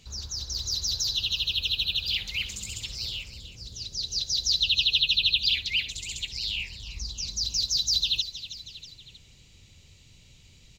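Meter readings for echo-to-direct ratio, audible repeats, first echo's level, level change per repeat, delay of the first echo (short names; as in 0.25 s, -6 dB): -12.5 dB, 3, -14.0 dB, -5.0 dB, 0.319 s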